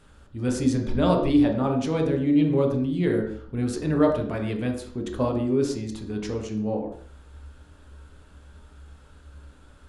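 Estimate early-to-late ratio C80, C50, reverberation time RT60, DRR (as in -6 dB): 9.0 dB, 6.5 dB, 0.50 s, 1.5 dB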